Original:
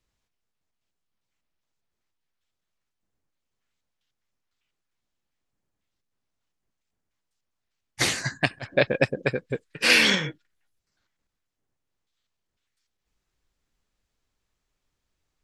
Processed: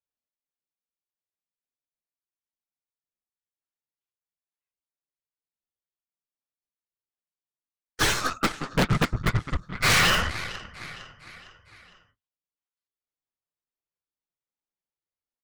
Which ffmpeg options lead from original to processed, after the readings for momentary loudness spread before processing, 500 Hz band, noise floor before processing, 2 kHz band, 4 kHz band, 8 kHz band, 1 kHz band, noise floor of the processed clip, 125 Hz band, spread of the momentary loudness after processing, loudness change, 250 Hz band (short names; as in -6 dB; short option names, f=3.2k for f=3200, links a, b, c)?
13 LU, -6.0 dB, -82 dBFS, -1.5 dB, -1.0 dB, +1.5 dB, +7.0 dB, under -85 dBFS, +5.5 dB, 20 LU, -1.5 dB, +1.0 dB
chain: -filter_complex "[0:a]highpass=650,agate=range=-23dB:threshold=-51dB:ratio=16:detection=peak,tiltshelf=f=970:g=7.5,flanger=delay=3.2:depth=7.5:regen=-36:speed=2:shape=triangular,afreqshift=-390,asplit=2[a][b];[b]aecho=0:1:457|914|1371|1828:0.1|0.05|0.025|0.0125[c];[a][c]amix=inputs=2:normalize=0,flanger=delay=1.9:depth=5.7:regen=-29:speed=0.86:shape=sinusoidal,aeval=exprs='0.158*sin(PI/2*3.98*val(0)/0.158)':c=same,aeval=exprs='0.158*(cos(1*acos(clip(val(0)/0.158,-1,1)))-cos(1*PI/2))+0.02*(cos(8*acos(clip(val(0)/0.158,-1,1)))-cos(8*PI/2))':c=same"